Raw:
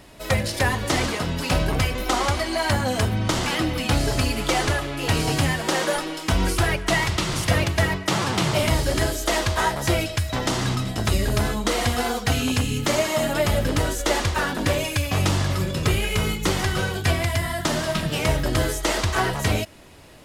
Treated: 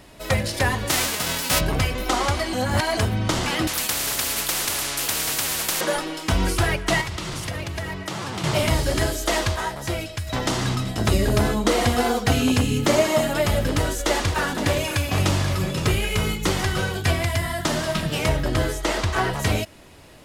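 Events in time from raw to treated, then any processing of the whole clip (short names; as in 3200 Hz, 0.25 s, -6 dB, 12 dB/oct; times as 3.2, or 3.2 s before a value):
0.89–1.59 spectral whitening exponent 0.3
2.53–2.97 reverse
3.67–5.81 spectral compressor 10:1
7.01–8.44 compressor 5:1, threshold -26 dBFS
9.56–10.27 gain -5.5 dB
11–13.21 bell 350 Hz +5 dB 2.7 oct
13.72–15.92 echo 0.518 s -11 dB
18.29–19.34 high shelf 5000 Hz -6 dB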